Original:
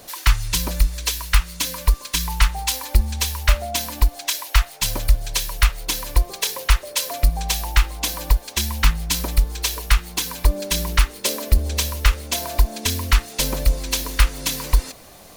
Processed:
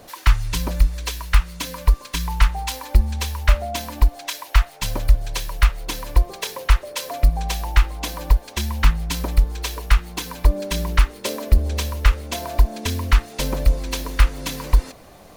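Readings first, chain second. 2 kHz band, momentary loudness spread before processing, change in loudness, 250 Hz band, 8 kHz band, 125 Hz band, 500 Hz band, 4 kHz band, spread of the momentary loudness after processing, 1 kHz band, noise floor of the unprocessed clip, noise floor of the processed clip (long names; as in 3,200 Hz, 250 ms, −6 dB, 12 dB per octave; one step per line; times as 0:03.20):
−2.0 dB, 4 LU, −0.5 dB, +1.5 dB, −7.5 dB, +1.5 dB, +1.0 dB, −5.5 dB, 7 LU, 0.0 dB, −42 dBFS, −44 dBFS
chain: high-shelf EQ 2,800 Hz −10.5 dB
level +1.5 dB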